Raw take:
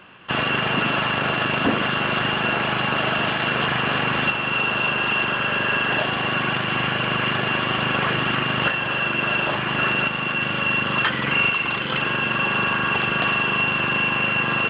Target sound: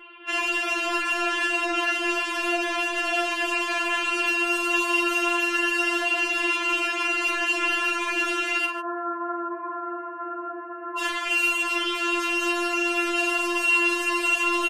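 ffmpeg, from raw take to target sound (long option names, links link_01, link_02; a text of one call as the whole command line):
ffmpeg -i in.wav -filter_complex "[0:a]alimiter=limit=-14.5dB:level=0:latency=1:release=21,aeval=exprs='0.188*(cos(1*acos(clip(val(0)/0.188,-1,1)))-cos(1*PI/2))+0.0376*(cos(5*acos(clip(val(0)/0.188,-1,1)))-cos(5*PI/2))':channel_layout=same,asettb=1/sr,asplit=3[link_01][link_02][link_03];[link_01]atrim=end=8.654[link_04];[link_02]atrim=start=8.65:end=10.99,asetpts=PTS-STARTPTS,afade=type=in:duration=0.004:curve=qsin,afade=type=out:start_time=2.336:duration=0.004:curve=qsin,asuperpass=centerf=720:order=12:qfactor=0.65[link_05];[link_03]atrim=start=10.986[link_06];[link_04][link_05]acrossfade=duration=0.004:curve1=hsin:curve2=qsin[link_07];[link_07][link_06]acrossfade=duration=0.004:curve1=qsin:curve2=hsin,aecho=1:1:43|144:0.422|0.224,afftfilt=real='re*4*eq(mod(b,16),0)':imag='im*4*eq(mod(b,16),0)':win_size=2048:overlap=0.75,volume=-3dB" out.wav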